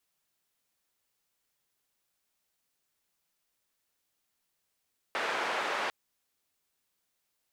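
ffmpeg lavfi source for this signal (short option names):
-f lavfi -i "anoisesrc=c=white:d=0.75:r=44100:seed=1,highpass=f=470,lowpass=f=1700,volume=-15.6dB"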